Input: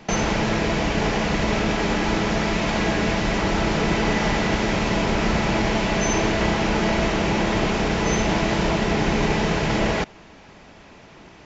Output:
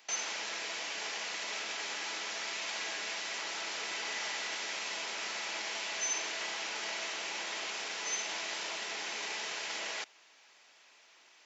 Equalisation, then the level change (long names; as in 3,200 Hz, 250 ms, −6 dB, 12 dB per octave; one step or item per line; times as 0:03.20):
high-pass filter 320 Hz 12 dB per octave
first difference
high-shelf EQ 5,200 Hz −5 dB
0.0 dB